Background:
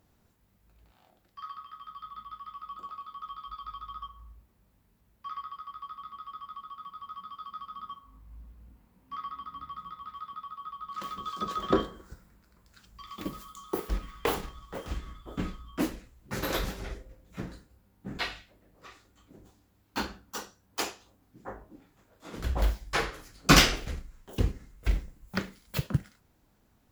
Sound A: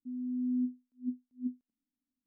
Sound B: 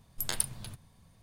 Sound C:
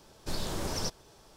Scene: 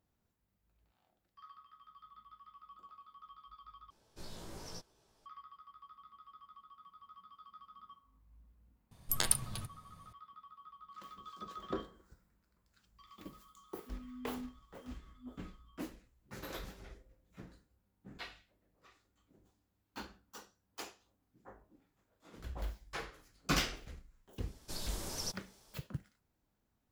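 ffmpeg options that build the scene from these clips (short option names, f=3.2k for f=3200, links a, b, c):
-filter_complex "[3:a]asplit=2[a][b];[0:a]volume=-14dB[c];[a]asplit=2[d][e];[e]adelay=18,volume=-2dB[f];[d][f]amix=inputs=2:normalize=0[g];[2:a]acontrast=27[h];[b]highshelf=f=4.3k:g=10.5[i];[c]asplit=2[j][k];[j]atrim=end=3.904[l];[g]atrim=end=1.36,asetpts=PTS-STARTPTS,volume=-16.5dB[m];[k]atrim=start=5.256[n];[h]atrim=end=1.22,asetpts=PTS-STARTPTS,volume=-4dB,afade=t=in:d=0.004:c=hsin,afade=t=out:st=1.216:d=0.004:c=hsin,adelay=8910[o];[1:a]atrim=end=2.26,asetpts=PTS-STARTPTS,volume=-14dB,afade=t=in:d=0.004:c=hsin,afade=t=out:st=2.256:d=0.004:c=hsin,adelay=13810[p];[i]atrim=end=1.36,asetpts=PTS-STARTPTS,volume=-10.5dB,afade=t=in:d=0.004:c=hsin,afade=t=out:st=1.356:d=0.004:c=hsin,adelay=24420[q];[l][m]acrossfade=d=0.004:c1=hsin:c2=hsin[r];[r][n]acrossfade=d=0.004:c1=hsin:c2=hsin[s];[s][o][p][q]amix=inputs=4:normalize=0"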